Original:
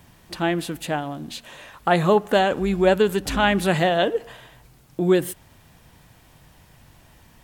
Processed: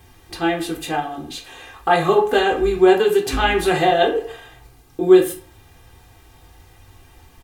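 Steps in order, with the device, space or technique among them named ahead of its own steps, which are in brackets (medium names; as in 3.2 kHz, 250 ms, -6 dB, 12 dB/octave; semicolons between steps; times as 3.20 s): 2.77–3.33 s: high-pass 110 Hz 24 dB/octave; microphone above a desk (comb 2.5 ms, depth 71%; reverberation RT60 0.40 s, pre-delay 4 ms, DRR 0.5 dB); trim -1.5 dB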